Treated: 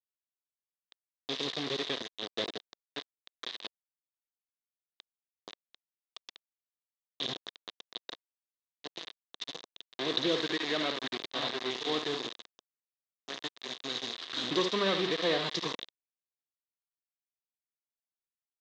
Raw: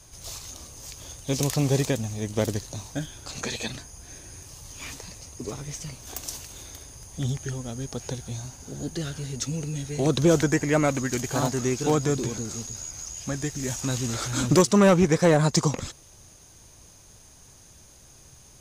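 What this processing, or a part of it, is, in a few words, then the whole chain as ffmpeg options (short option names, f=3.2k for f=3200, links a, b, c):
hand-held game console: -filter_complex "[0:a]asettb=1/sr,asplit=3[a][b][c];[a]atrim=end=10.814[d];[b]atrim=start=10.81:end=11.71,asetpts=PTS-STARTPTS,afade=t=in:d=0.004:c=qsin,afade=t=out:st=0.896:d=0.004:c=qsin,acrossover=split=4500[e][f];[f]acompressor=threshold=-44dB:ratio=4:attack=1:release=60[g];[e][g]amix=inputs=2:normalize=0[h];[c]atrim=start=11.706[i];[d][h]acrossfade=d=0.004:c1=hsin:c2=qsin[j];[j][i]acrossfade=d=0.004:c1=qsin:c2=hsin,aecho=1:1:56|72:0.299|0.299,acrusher=bits=3:mix=0:aa=0.000001,highpass=440,equalizer=f=580:t=q:w=4:g=-7,equalizer=f=850:t=q:w=4:g=-9,equalizer=f=1.4k:t=q:w=4:g=-8,equalizer=f=2.4k:t=q:w=4:g=-5,equalizer=f=3.7k:t=q:w=4:g=10,lowpass=f=4.1k:w=0.5412,lowpass=f=4.1k:w=1.3066,volume=-5dB"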